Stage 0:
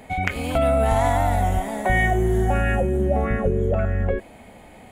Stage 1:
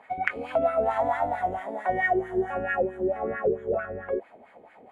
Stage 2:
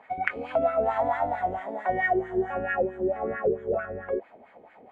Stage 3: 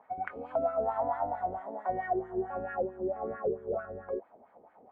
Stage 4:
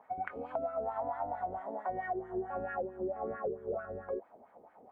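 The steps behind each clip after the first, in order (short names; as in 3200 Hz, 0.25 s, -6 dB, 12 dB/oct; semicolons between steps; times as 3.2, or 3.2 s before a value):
wah 4.5 Hz 390–1700 Hz, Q 2.6; gain +2 dB
air absorption 78 m
resonant high shelf 1600 Hz -10.5 dB, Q 1.5; gain -7 dB
compressor, threshold -32 dBFS, peak gain reduction 8 dB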